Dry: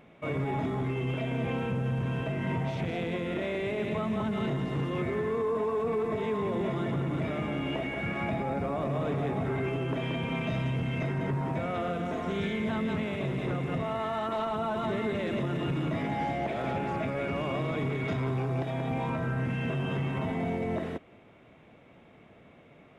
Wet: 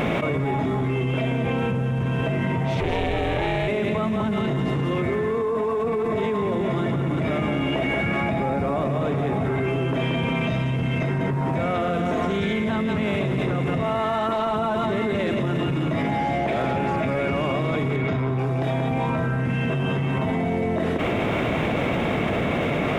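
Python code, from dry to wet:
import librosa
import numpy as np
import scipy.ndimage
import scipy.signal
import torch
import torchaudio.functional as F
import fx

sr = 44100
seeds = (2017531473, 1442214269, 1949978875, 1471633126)

y = fx.ring_mod(x, sr, carrier_hz=240.0, at=(2.8, 3.68))
y = fx.high_shelf(y, sr, hz=4800.0, db=-11.5, at=(17.96, 18.39))
y = fx.env_flatten(y, sr, amount_pct=100)
y = y * librosa.db_to_amplitude(4.0)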